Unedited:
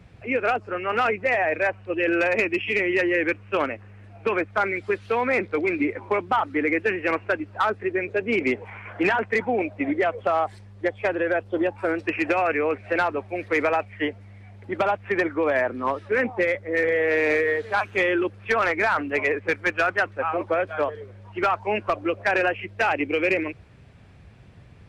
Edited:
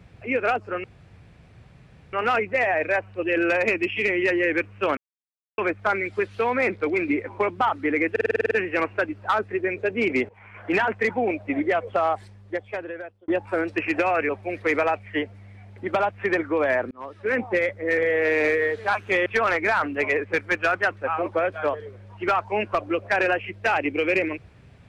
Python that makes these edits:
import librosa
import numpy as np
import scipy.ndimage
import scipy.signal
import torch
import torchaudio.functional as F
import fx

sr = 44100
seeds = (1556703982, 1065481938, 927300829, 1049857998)

y = fx.edit(x, sr, fx.insert_room_tone(at_s=0.84, length_s=1.29),
    fx.silence(start_s=3.68, length_s=0.61),
    fx.stutter(start_s=6.82, slice_s=0.05, count=9),
    fx.fade_in_from(start_s=8.6, length_s=0.51, floor_db=-17.5),
    fx.fade_out_span(start_s=10.44, length_s=1.15),
    fx.cut(start_s=12.6, length_s=0.55),
    fx.fade_in_span(start_s=15.77, length_s=0.49),
    fx.cut(start_s=18.12, length_s=0.29), tone=tone)